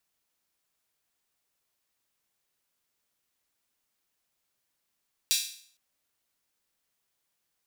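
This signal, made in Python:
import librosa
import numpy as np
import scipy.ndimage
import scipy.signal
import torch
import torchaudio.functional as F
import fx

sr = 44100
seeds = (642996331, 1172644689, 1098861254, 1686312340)

y = fx.drum_hat_open(sr, length_s=0.46, from_hz=3600.0, decay_s=0.54)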